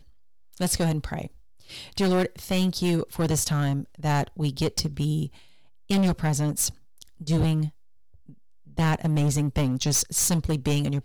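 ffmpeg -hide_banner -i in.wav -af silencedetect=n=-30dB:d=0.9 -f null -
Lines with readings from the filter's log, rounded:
silence_start: 7.68
silence_end: 8.78 | silence_duration: 1.10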